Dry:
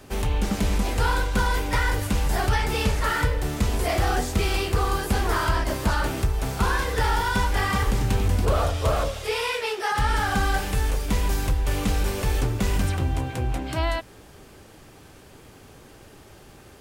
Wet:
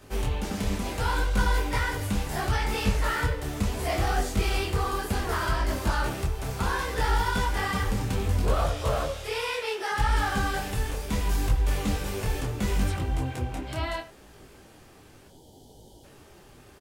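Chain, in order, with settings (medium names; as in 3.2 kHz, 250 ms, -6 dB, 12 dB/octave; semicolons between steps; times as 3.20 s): time-frequency box 15.28–16.04 s, 970–2900 Hz -22 dB; speakerphone echo 80 ms, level -14 dB; detune thickener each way 24 cents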